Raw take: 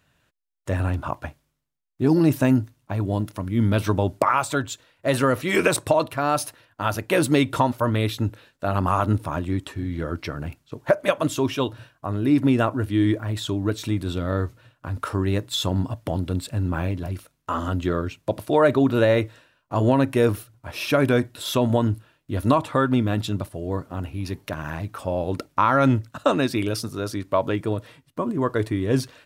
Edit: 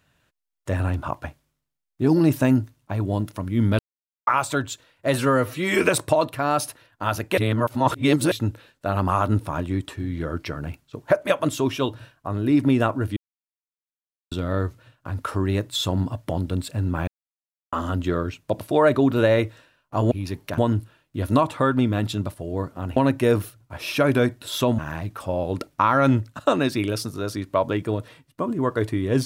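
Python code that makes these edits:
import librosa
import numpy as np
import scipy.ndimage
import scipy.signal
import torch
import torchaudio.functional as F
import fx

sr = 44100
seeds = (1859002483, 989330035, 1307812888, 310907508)

y = fx.edit(x, sr, fx.silence(start_s=3.79, length_s=0.48),
    fx.stretch_span(start_s=5.16, length_s=0.43, factor=1.5),
    fx.reverse_span(start_s=7.16, length_s=0.94),
    fx.silence(start_s=12.95, length_s=1.15),
    fx.silence(start_s=16.86, length_s=0.65),
    fx.swap(start_s=19.9, length_s=1.82, other_s=24.11, other_length_s=0.46), tone=tone)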